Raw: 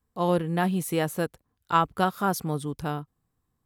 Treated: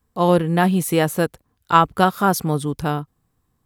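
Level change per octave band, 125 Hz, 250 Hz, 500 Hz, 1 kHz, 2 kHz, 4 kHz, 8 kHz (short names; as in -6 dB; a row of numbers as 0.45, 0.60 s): +8.0, +8.0, +8.0, +8.0, +8.0, +8.0, +8.0 dB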